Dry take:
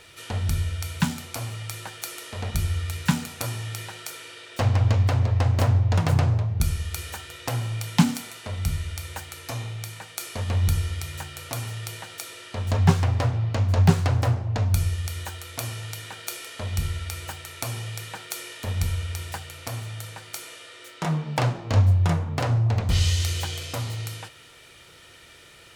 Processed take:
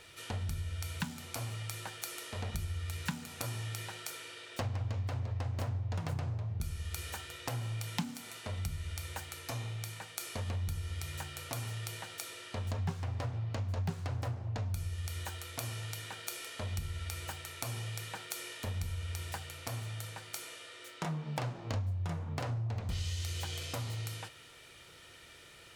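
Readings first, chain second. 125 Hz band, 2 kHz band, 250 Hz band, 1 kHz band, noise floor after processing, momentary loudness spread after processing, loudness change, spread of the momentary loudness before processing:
−13.5 dB, −9.5 dB, −15.0 dB, −11.5 dB, −55 dBFS, 6 LU, −13.0 dB, 15 LU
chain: downward compressor 4 to 1, threshold −29 dBFS, peak gain reduction 16 dB
level −5.5 dB

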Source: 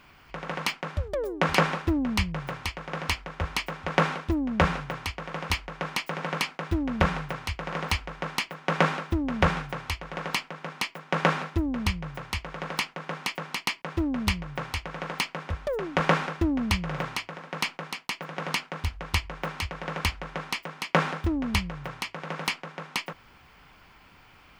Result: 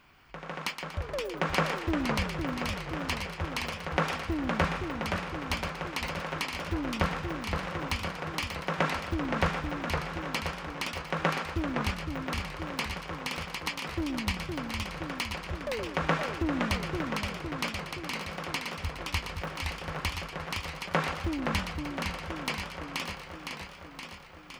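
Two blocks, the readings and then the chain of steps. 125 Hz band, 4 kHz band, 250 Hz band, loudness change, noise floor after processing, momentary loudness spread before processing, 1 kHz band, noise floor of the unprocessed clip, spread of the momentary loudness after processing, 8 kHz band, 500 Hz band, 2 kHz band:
−3.5 dB, −3.0 dB, −3.5 dB, −3.5 dB, −45 dBFS, 9 LU, −3.0 dB, −55 dBFS, 7 LU, −3.0 dB, −3.0 dB, −3.0 dB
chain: feedback echo with a high-pass in the loop 119 ms, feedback 44%, high-pass 420 Hz, level −8 dB
feedback echo with a swinging delay time 516 ms, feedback 64%, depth 162 cents, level −5 dB
level −5.5 dB

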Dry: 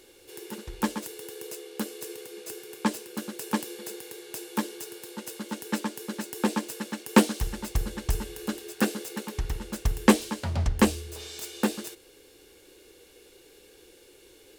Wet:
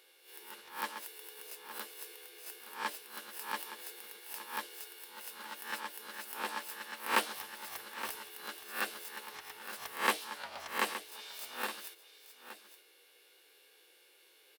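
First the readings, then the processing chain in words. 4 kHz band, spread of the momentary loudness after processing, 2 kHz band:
−4.5 dB, 16 LU, −2.5 dB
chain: peak hold with a rise ahead of every peak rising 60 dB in 0.37 s
high-pass filter 900 Hz 12 dB per octave
parametric band 7,100 Hz −10.5 dB 0.78 octaves
on a send: single-tap delay 869 ms −12 dB
on the sum: level −5 dB

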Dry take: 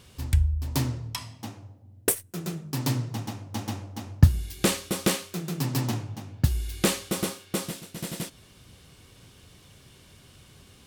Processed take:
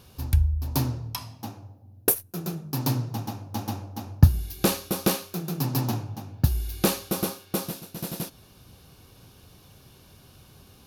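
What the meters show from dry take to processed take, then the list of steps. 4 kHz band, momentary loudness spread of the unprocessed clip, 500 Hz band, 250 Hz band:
−1.5 dB, 11 LU, +1.0 dB, +1.0 dB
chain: thirty-one-band graphic EQ 800 Hz +4 dB, 2,000 Hz −9 dB, 3,150 Hz −5 dB, 8,000 Hz −10 dB, 12,500 Hz +8 dB
level +1 dB

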